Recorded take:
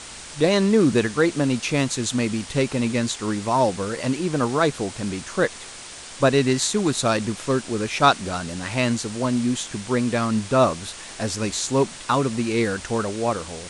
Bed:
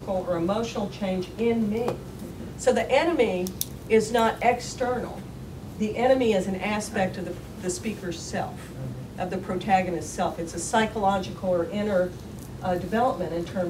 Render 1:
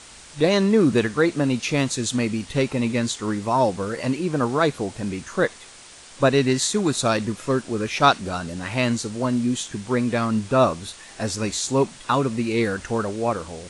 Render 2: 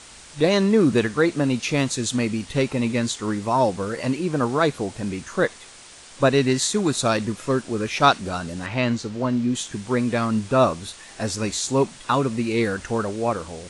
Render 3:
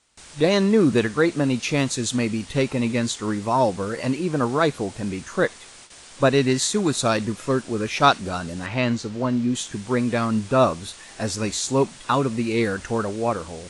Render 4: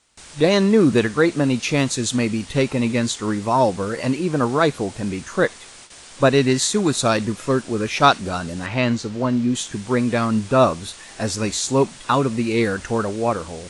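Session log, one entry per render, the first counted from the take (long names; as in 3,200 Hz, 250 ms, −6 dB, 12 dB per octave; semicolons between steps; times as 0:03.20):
noise reduction from a noise print 6 dB
0:08.66–0:09.55: high-frequency loss of the air 96 metres
noise gate with hold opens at −34 dBFS
level +2.5 dB; brickwall limiter −1 dBFS, peak gain reduction 1 dB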